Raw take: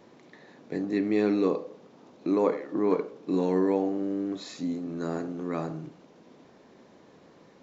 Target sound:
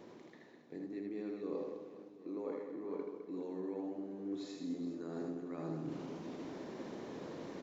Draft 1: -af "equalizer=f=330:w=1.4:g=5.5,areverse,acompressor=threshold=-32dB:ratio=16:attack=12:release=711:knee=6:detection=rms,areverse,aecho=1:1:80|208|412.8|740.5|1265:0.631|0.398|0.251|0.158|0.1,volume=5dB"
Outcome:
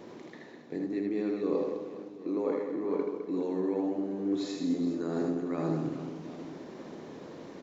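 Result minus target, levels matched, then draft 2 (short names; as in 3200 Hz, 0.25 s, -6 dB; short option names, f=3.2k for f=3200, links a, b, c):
compressor: peak gain reduction -11 dB
-af "equalizer=f=330:w=1.4:g=5.5,areverse,acompressor=threshold=-43.5dB:ratio=16:attack=12:release=711:knee=6:detection=rms,areverse,aecho=1:1:80|208|412.8|740.5|1265:0.631|0.398|0.251|0.158|0.1,volume=5dB"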